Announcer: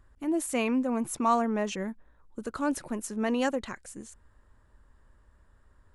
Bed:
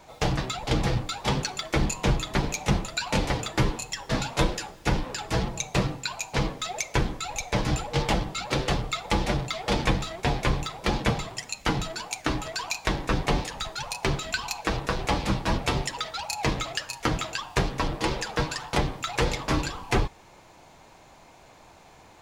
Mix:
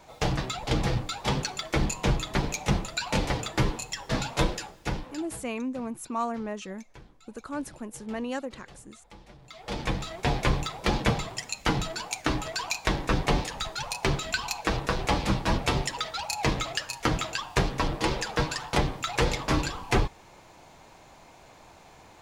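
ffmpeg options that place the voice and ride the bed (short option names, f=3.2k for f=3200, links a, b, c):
-filter_complex "[0:a]adelay=4900,volume=-5dB[a];[1:a]volume=24dB,afade=t=out:st=4.47:d=0.97:silence=0.0630957,afade=t=in:st=9.4:d=0.97:silence=0.0530884[b];[a][b]amix=inputs=2:normalize=0"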